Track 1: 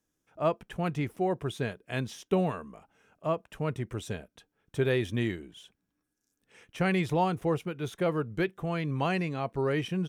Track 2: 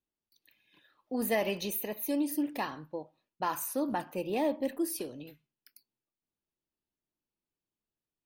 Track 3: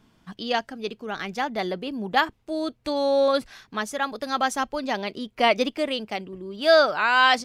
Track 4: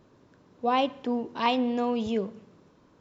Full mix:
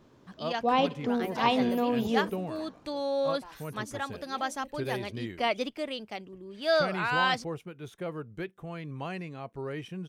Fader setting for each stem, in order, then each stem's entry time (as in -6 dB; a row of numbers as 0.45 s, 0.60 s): -8.0 dB, -17.5 dB, -8.5 dB, -0.5 dB; 0.00 s, 0.00 s, 0.00 s, 0.00 s